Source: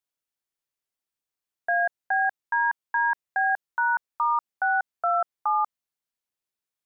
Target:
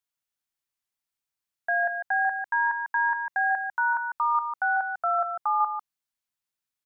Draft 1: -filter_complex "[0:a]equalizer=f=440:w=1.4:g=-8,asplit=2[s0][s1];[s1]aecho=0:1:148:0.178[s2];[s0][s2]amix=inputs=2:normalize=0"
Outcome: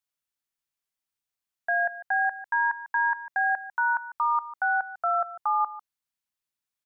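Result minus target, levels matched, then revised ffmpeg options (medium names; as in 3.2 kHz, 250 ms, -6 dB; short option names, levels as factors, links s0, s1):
echo-to-direct -8 dB
-filter_complex "[0:a]equalizer=f=440:w=1.4:g=-8,asplit=2[s0][s1];[s1]aecho=0:1:148:0.447[s2];[s0][s2]amix=inputs=2:normalize=0"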